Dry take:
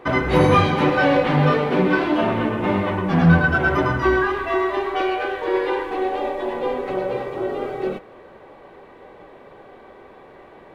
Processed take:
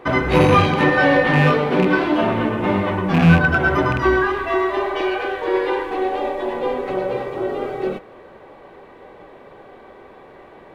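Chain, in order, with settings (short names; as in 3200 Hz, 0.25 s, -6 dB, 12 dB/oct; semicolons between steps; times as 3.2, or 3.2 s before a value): rattling part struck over -18 dBFS, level -16 dBFS; 0.79–1.47 whine 1800 Hz -22 dBFS; 4.8–5.23 spectral repair 540–1700 Hz; gain +1.5 dB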